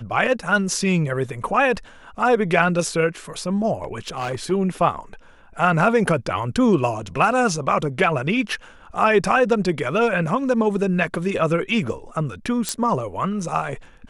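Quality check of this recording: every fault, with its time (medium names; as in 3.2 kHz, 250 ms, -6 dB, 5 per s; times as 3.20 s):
3.82–4.52 s: clipped -21 dBFS
12.69 s: pop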